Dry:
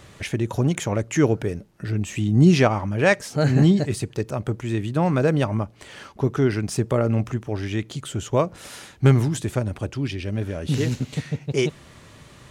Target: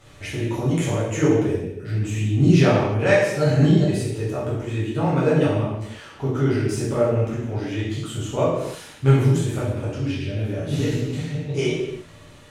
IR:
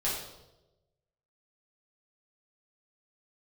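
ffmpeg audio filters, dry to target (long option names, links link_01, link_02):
-filter_complex "[1:a]atrim=start_sample=2205,afade=type=out:start_time=0.32:duration=0.01,atrim=end_sample=14553,asetrate=33075,aresample=44100[link_01];[0:a][link_01]afir=irnorm=-1:irlink=0,volume=-9dB"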